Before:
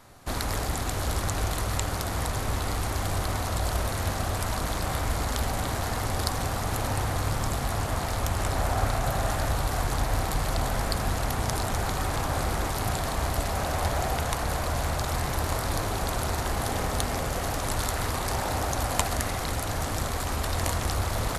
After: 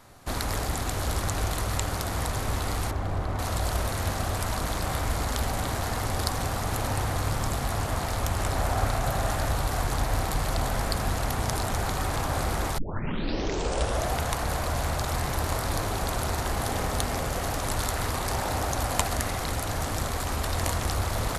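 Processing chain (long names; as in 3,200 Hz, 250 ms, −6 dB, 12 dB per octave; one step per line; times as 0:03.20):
0:02.91–0:03.39: low-pass filter 1,100 Hz 6 dB per octave
0:12.78: tape start 1.36 s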